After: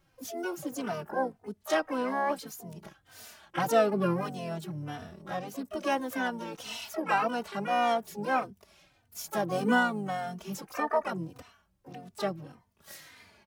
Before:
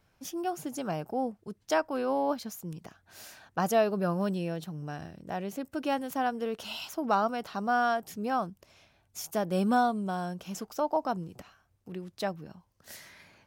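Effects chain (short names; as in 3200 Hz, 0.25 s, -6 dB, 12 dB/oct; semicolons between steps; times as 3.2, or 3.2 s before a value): harmoniser -5 st -13 dB, +4 st -15 dB, +12 st -7 dB; endless flanger 3.2 ms -1.7 Hz; gain +1.5 dB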